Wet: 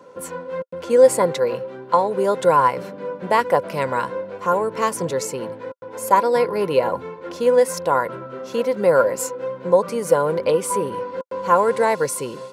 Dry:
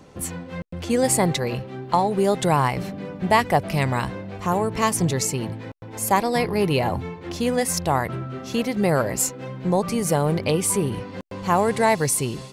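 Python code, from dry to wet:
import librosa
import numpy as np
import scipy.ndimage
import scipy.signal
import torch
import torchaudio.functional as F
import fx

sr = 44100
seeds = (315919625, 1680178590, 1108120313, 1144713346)

y = scipy.signal.sosfilt(scipy.signal.butter(2, 180.0, 'highpass', fs=sr, output='sos'), x)
y = fx.small_body(y, sr, hz=(520.0, 1000.0, 1400.0), ring_ms=40, db=17)
y = y * librosa.db_to_amplitude(-5.0)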